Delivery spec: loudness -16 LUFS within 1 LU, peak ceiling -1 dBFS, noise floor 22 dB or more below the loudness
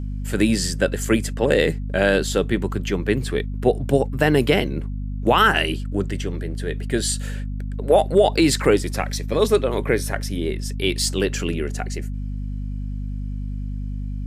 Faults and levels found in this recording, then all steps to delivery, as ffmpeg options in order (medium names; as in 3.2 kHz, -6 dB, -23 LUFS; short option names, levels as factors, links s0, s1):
hum 50 Hz; highest harmonic 250 Hz; hum level -25 dBFS; loudness -22.0 LUFS; peak level -3.5 dBFS; loudness target -16.0 LUFS
-> -af "bandreject=f=50:t=h:w=4,bandreject=f=100:t=h:w=4,bandreject=f=150:t=h:w=4,bandreject=f=200:t=h:w=4,bandreject=f=250:t=h:w=4"
-af "volume=2,alimiter=limit=0.891:level=0:latency=1"